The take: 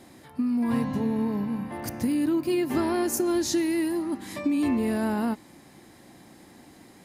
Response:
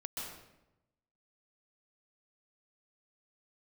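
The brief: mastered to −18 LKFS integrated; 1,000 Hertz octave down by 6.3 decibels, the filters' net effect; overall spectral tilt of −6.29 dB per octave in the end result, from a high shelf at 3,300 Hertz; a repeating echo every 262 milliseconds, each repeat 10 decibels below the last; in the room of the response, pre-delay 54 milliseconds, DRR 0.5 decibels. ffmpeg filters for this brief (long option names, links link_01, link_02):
-filter_complex "[0:a]equalizer=frequency=1000:width_type=o:gain=-8,highshelf=frequency=3300:gain=-6,aecho=1:1:262|524|786|1048:0.316|0.101|0.0324|0.0104,asplit=2[link_01][link_02];[1:a]atrim=start_sample=2205,adelay=54[link_03];[link_02][link_03]afir=irnorm=-1:irlink=0,volume=-0.5dB[link_04];[link_01][link_04]amix=inputs=2:normalize=0,volume=6dB"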